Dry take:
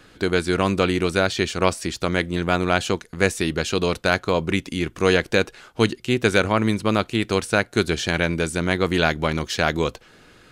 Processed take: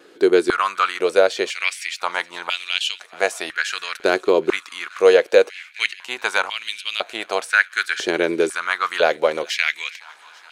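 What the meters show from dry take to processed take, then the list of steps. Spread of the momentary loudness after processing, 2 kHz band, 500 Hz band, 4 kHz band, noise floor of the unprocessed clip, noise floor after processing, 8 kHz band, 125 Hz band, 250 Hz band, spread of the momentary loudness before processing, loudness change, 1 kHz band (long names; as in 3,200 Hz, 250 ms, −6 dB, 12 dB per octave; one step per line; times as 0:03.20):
9 LU, +3.0 dB, +3.5 dB, +2.0 dB, −52 dBFS, −48 dBFS, −1.0 dB, below −20 dB, −6.0 dB, 5 LU, +1.5 dB, +1.5 dB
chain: pitch vibrato 0.81 Hz 8.3 cents
delay with a high-pass on its return 422 ms, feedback 67%, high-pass 1,600 Hz, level −19 dB
high-pass on a step sequencer 2 Hz 380–2,900 Hz
level −1.5 dB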